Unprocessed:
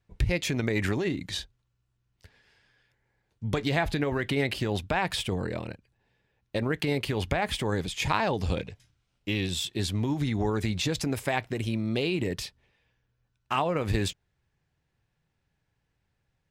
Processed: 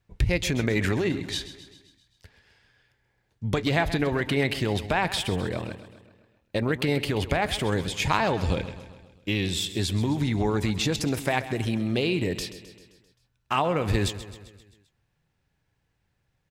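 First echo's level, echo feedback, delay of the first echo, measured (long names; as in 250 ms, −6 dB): −14.0 dB, 57%, 131 ms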